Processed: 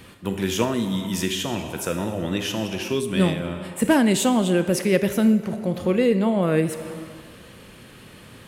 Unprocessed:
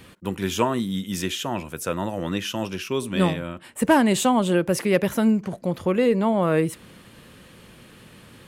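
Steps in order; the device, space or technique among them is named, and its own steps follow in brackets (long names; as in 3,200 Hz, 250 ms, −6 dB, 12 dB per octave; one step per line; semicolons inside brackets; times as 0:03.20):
compressed reverb return (on a send at −4 dB: convolution reverb RT60 1.5 s, pre-delay 23 ms + downward compressor 5 to 1, threshold −25 dBFS, peak gain reduction 10.5 dB)
on the sum: dynamic equaliser 980 Hz, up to −7 dB, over −37 dBFS, Q 1.2
level +1.5 dB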